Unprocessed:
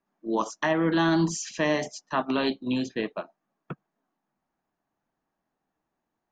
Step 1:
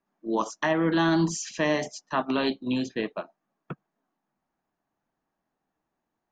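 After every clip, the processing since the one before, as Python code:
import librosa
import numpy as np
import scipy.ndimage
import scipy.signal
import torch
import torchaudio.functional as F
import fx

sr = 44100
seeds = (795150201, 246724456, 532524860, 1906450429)

y = x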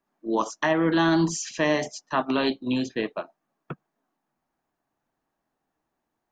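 y = fx.peak_eq(x, sr, hz=190.0, db=-6.5, octaves=0.22)
y = y * 10.0 ** (2.0 / 20.0)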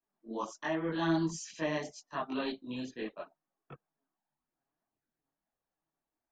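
y = fx.chorus_voices(x, sr, voices=4, hz=0.78, base_ms=22, depth_ms=3.7, mix_pct=65)
y = y * 10.0 ** (-9.0 / 20.0)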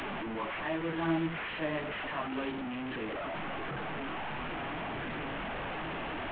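y = fx.delta_mod(x, sr, bps=16000, step_db=-30.0)
y = y * 10.0 ** (-1.0 / 20.0)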